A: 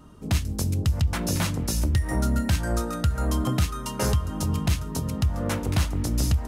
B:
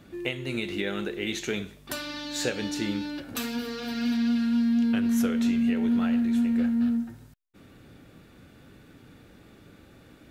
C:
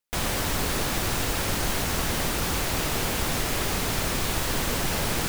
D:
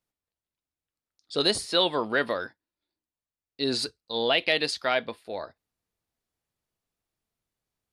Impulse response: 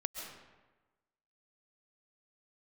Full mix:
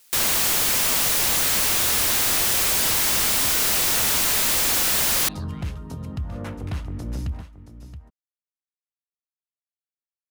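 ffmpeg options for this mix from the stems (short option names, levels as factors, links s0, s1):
-filter_complex "[0:a]bass=f=250:g=2,treble=f=4000:g=-10,adelay=950,volume=0.501,asplit=2[s0][s1];[s1]volume=0.211[s2];[2:a]highshelf=f=2300:g=11.5,aeval=exprs='0.473*sin(PI/2*7.08*val(0)/0.473)':c=same,volume=0.944[s3];[3:a]highpass=1300,aeval=exprs='clip(val(0),-1,0.126)':c=same,volume=0.75,asplit=2[s4][s5];[s5]volume=0.112[s6];[s2][s6]amix=inputs=2:normalize=0,aecho=0:1:674:1[s7];[s0][s3][s4][s7]amix=inputs=4:normalize=0,asoftclip=type=tanh:threshold=0.1"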